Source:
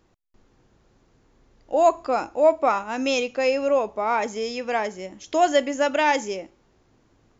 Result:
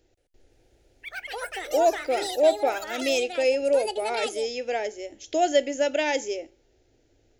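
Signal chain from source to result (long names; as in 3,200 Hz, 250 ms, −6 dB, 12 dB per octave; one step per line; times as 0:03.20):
delay with pitch and tempo change per echo 174 ms, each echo +7 semitones, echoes 3, each echo −6 dB
phaser with its sweep stopped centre 450 Hz, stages 4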